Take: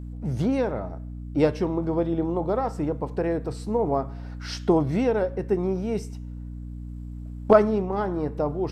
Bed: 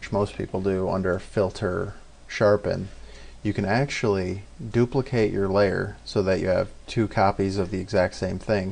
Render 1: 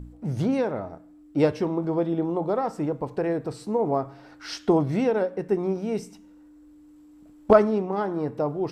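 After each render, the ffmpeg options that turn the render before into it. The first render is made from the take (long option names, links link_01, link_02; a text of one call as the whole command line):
ffmpeg -i in.wav -af "bandreject=frequency=60:width_type=h:width=4,bandreject=frequency=120:width_type=h:width=4,bandreject=frequency=180:width_type=h:width=4,bandreject=frequency=240:width_type=h:width=4" out.wav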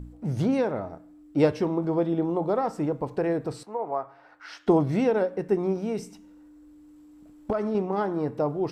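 ffmpeg -i in.wav -filter_complex "[0:a]asettb=1/sr,asplit=3[link_01][link_02][link_03];[link_01]atrim=end=3.634[link_04];[link_02]atrim=start=3.63:end=4.67,asetpts=PTS-STARTPTS,afade=type=in:duration=0.004:curve=qsin,afade=type=out:start_time=1.036:duration=0.004:curve=qsin,acrossover=split=570 2400:gain=0.126 1 0.2[link_05][link_06][link_07];[link_05][link_06][link_07]amix=inputs=3:normalize=0[link_08];[link_03]atrim=start=4.666[link_09];[link_04][link_08]acrossfade=duration=0.004:curve1=hsin:curve2=qsin[link_10];[link_10][link_09]acrossfade=duration=0.004:curve1=qsin:curve2=hsin,asettb=1/sr,asplit=3[link_11][link_12][link_13];[link_11]atrim=end=5.824[link_14];[link_12]atrim=start=5.82:end=7.75,asetpts=PTS-STARTPTS,afade=type=in:duration=0.004:curve=qsin,afade=type=out:start_time=1.926:duration=0.004:curve=qsin,acompressor=threshold=-23dB:ratio=6:attack=3.2:release=140:knee=1:detection=peak[link_15];[link_13]atrim=start=7.746[link_16];[link_14][link_15]acrossfade=duration=0.004:curve1=hsin:curve2=qsin[link_17];[link_17][link_16]acrossfade=duration=0.004:curve1=qsin:curve2=hsin" out.wav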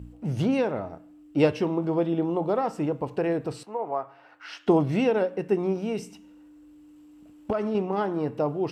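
ffmpeg -i in.wav -af "highpass=52,equalizer=frequency=2800:width=3.9:gain=9" out.wav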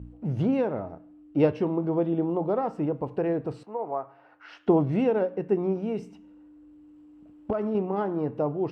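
ffmpeg -i in.wav -af "lowpass=frequency=1100:poles=1" out.wav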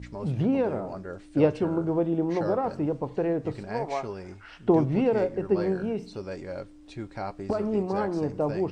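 ffmpeg -i in.wav -i bed.wav -filter_complex "[1:a]volume=-14dB[link_01];[0:a][link_01]amix=inputs=2:normalize=0" out.wav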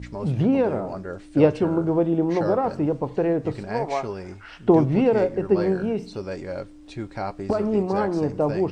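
ffmpeg -i in.wav -af "volume=4.5dB" out.wav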